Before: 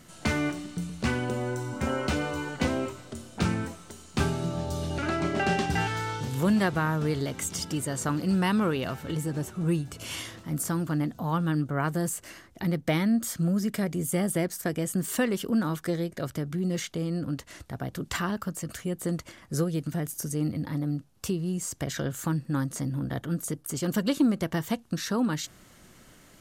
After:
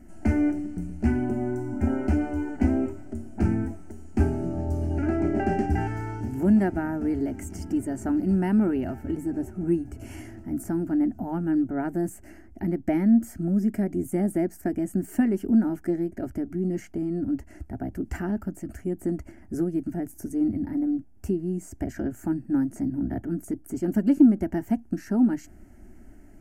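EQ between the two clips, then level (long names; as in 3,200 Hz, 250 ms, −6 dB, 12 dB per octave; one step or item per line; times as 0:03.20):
tilt shelving filter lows +10 dB, about 780 Hz
low-shelf EQ 72 Hz +5.5 dB
phaser with its sweep stopped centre 740 Hz, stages 8
0.0 dB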